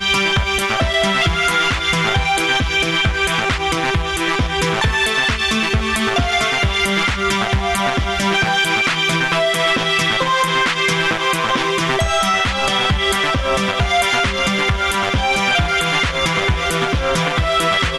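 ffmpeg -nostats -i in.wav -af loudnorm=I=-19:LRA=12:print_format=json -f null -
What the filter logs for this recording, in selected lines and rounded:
"input_i" : "-16.1",
"input_tp" : "-5.9",
"input_lra" : "0.9",
"input_thresh" : "-26.1",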